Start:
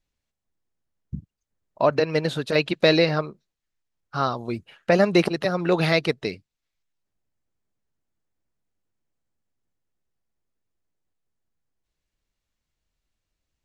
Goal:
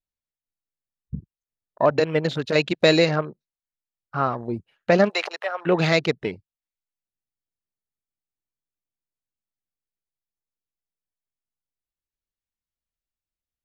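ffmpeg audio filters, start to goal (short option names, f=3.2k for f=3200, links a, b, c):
-filter_complex "[0:a]afwtdn=0.0141,asplit=3[a][b][c];[a]afade=t=out:st=5.08:d=0.02[d];[b]highpass=f=630:w=0.5412,highpass=f=630:w=1.3066,afade=t=in:st=5.08:d=0.02,afade=t=out:st=5.65:d=0.02[e];[c]afade=t=in:st=5.65:d=0.02[f];[d][e][f]amix=inputs=3:normalize=0,volume=1dB"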